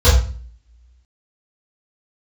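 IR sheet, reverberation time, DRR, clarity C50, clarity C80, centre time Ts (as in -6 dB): 0.40 s, -14.0 dB, 5.5 dB, 9.0 dB, 39 ms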